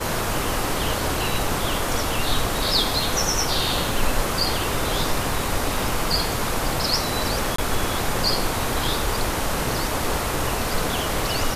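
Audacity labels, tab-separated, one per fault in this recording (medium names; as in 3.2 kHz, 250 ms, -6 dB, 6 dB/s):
7.560000	7.580000	dropout 24 ms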